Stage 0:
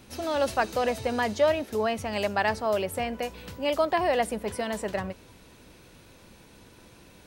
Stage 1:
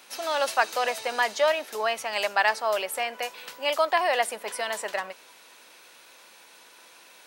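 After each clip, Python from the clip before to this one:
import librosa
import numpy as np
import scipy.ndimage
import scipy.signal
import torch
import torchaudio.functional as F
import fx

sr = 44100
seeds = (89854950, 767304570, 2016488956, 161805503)

y = scipy.signal.sosfilt(scipy.signal.butter(2, 810.0, 'highpass', fs=sr, output='sos'), x)
y = y * 10.0 ** (5.5 / 20.0)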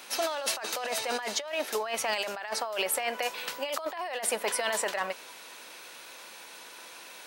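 y = fx.over_compress(x, sr, threshold_db=-32.0, ratio=-1.0)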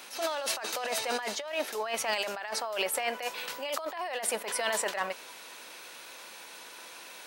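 y = fx.attack_slew(x, sr, db_per_s=120.0)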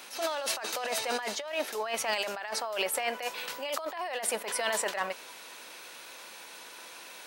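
y = x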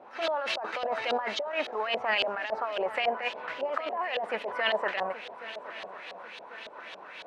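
y = fx.echo_swing(x, sr, ms=1098, ratio=3, feedback_pct=45, wet_db=-15.0)
y = fx.filter_lfo_lowpass(y, sr, shape='saw_up', hz=3.6, low_hz=570.0, high_hz=3800.0, q=2.5)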